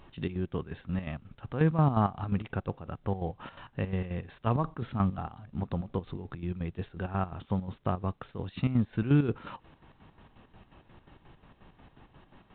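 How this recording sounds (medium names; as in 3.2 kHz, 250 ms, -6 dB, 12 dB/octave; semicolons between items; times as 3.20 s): chopped level 5.6 Hz, depth 65%, duty 55%; µ-law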